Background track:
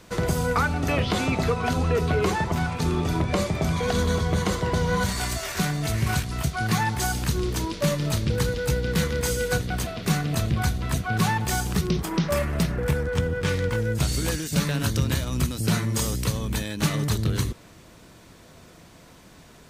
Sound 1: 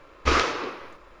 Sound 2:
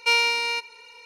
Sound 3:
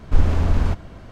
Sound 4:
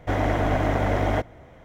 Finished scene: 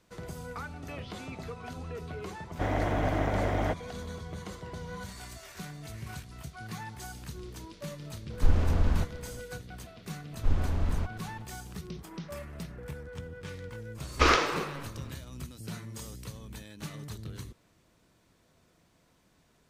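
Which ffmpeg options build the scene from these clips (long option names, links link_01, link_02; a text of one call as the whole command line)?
ffmpeg -i bed.wav -i cue0.wav -i cue1.wav -i cue2.wav -i cue3.wav -filter_complex "[3:a]asplit=2[link_01][link_02];[0:a]volume=-17dB[link_03];[4:a]atrim=end=1.64,asetpts=PTS-STARTPTS,volume=-6dB,afade=type=in:duration=0.004:curve=hsin,afade=type=out:start_time=1.636:duration=0.004:curve=hsin,adelay=2520[link_04];[link_01]atrim=end=1.11,asetpts=PTS-STARTPTS,volume=-7dB,afade=type=in:duration=0.004:curve=hsin,afade=type=out:start_time=1.106:duration=0.004:curve=hsin,adelay=8300[link_05];[link_02]atrim=end=1.11,asetpts=PTS-STARTPTS,volume=-10.5dB,afade=type=in:duration=0.004:curve=hsin,afade=type=out:start_time=1.106:duration=0.004:curve=hsin,adelay=10320[link_06];[1:a]atrim=end=1.2,asetpts=PTS-STARTPTS,volume=-1dB,afade=type=in:duration=0.05,afade=type=out:start_time=1.15:duration=0.05,adelay=13940[link_07];[link_03][link_04][link_05][link_06][link_07]amix=inputs=5:normalize=0" out.wav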